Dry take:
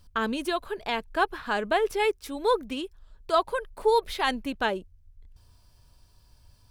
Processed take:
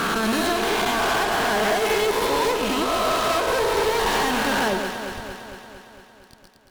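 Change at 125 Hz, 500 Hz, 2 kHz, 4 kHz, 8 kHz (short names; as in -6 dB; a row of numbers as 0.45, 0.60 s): n/a, +5.0 dB, +8.0 dB, +9.5 dB, +16.5 dB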